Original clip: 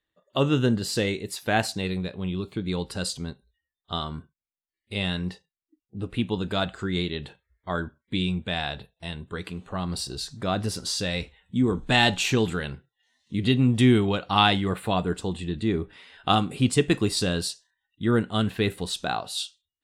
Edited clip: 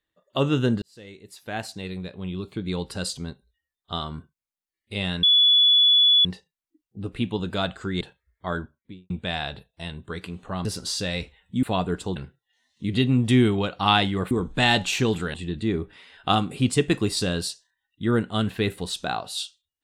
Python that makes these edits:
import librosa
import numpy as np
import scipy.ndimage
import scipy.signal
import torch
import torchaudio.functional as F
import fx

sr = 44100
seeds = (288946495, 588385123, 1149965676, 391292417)

y = fx.studio_fade_out(x, sr, start_s=7.78, length_s=0.55)
y = fx.edit(y, sr, fx.fade_in_span(start_s=0.82, length_s=1.89),
    fx.insert_tone(at_s=5.23, length_s=1.02, hz=3420.0, db=-13.5),
    fx.cut(start_s=6.99, length_s=0.25),
    fx.cut(start_s=9.88, length_s=0.77),
    fx.swap(start_s=11.63, length_s=1.03, other_s=14.81, other_length_s=0.53), tone=tone)